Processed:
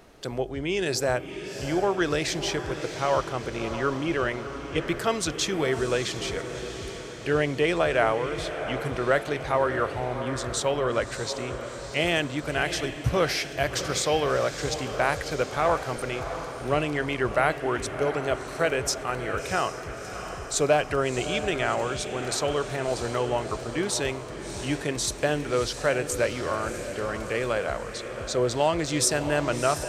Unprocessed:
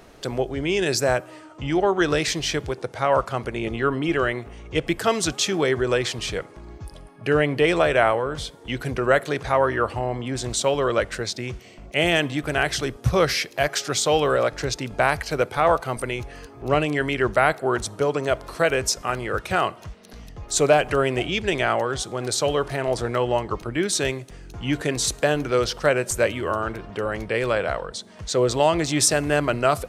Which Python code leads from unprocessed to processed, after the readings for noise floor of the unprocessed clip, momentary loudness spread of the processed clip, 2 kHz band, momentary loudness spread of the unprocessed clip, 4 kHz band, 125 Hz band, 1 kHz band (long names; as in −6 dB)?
−46 dBFS, 8 LU, −4.0 dB, 11 LU, −4.0 dB, −4.0 dB, −4.0 dB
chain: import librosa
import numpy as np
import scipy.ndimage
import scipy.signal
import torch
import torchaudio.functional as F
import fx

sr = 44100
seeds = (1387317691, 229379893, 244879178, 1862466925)

y = fx.echo_diffused(x, sr, ms=671, feedback_pct=59, wet_db=-9.5)
y = y * librosa.db_to_amplitude(-4.5)